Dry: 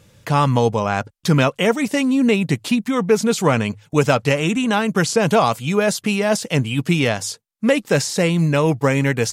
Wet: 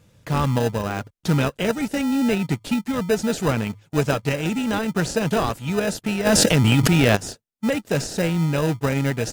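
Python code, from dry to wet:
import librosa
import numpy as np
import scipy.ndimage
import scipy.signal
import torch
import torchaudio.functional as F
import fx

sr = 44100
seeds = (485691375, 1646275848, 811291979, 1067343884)

p1 = fx.sample_hold(x, sr, seeds[0], rate_hz=1100.0, jitter_pct=0)
p2 = x + (p1 * librosa.db_to_amplitude(-4.0))
p3 = fx.env_flatten(p2, sr, amount_pct=100, at=(6.25, 7.15), fade=0.02)
y = p3 * librosa.db_to_amplitude(-7.5)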